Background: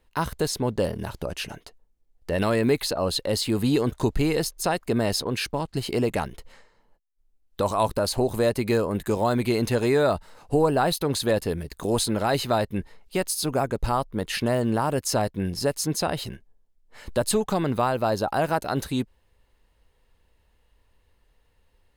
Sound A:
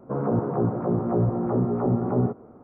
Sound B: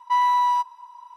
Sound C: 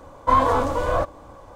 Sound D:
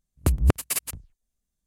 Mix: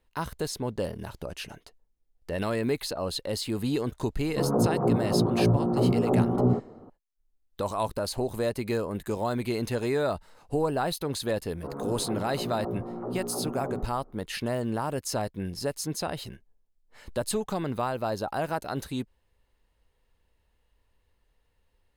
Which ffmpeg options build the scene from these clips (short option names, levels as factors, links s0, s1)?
-filter_complex "[1:a]asplit=2[s0][s1];[0:a]volume=0.501[s2];[s0]lowpass=1400[s3];[s1]equalizer=f=77:w=0.52:g=-8[s4];[s3]atrim=end=2.63,asetpts=PTS-STARTPTS,afade=t=in:d=0.004:c=hsin,afade=t=out:st=2.626:d=0.004:c=hsin,adelay=4270[s5];[s4]atrim=end=2.63,asetpts=PTS-STARTPTS,volume=0.376,afade=t=in:d=0.004:c=hsin,afade=t=out:st=2.626:d=0.004:c=hsin,adelay=11530[s6];[s2][s5][s6]amix=inputs=3:normalize=0"